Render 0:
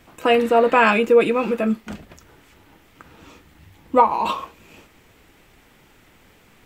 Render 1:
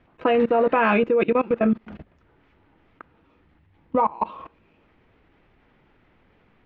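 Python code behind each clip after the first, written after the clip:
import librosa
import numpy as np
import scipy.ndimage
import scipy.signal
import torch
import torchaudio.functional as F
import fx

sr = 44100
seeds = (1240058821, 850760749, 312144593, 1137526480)

y = fx.high_shelf(x, sr, hz=5400.0, db=-10.0)
y = fx.level_steps(y, sr, step_db=21)
y = fx.air_absorb(y, sr, metres=290.0)
y = F.gain(torch.from_numpy(y), 4.0).numpy()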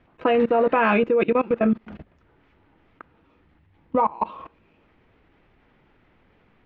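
y = x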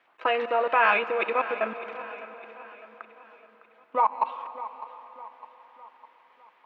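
y = scipy.signal.sosfilt(scipy.signal.butter(2, 830.0, 'highpass', fs=sr, output='sos'), x)
y = fx.echo_feedback(y, sr, ms=606, feedback_pct=47, wet_db=-15.5)
y = fx.rev_plate(y, sr, seeds[0], rt60_s=4.5, hf_ratio=0.85, predelay_ms=120, drr_db=12.5)
y = F.gain(torch.from_numpy(y), 1.5).numpy()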